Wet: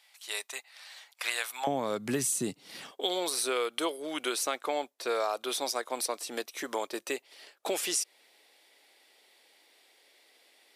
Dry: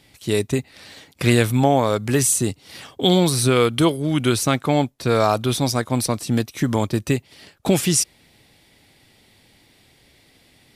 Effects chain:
high-pass filter 760 Hz 24 dB per octave, from 0:01.67 160 Hz, from 0:02.91 410 Hz
downward compressor 4 to 1, threshold −21 dBFS, peak gain reduction 8 dB
level −6 dB

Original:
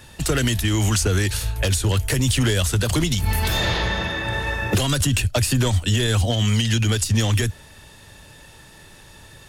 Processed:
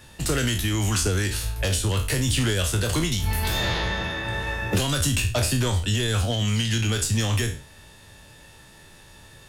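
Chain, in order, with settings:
peak hold with a decay on every bin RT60 0.40 s
level −4.5 dB

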